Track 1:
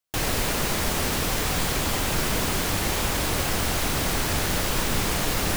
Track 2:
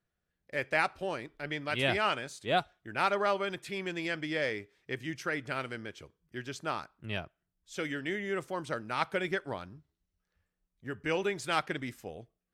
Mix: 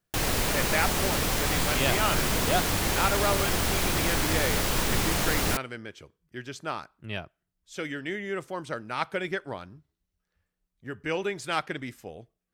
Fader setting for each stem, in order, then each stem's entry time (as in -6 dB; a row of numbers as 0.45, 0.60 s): -1.5, +1.5 dB; 0.00, 0.00 s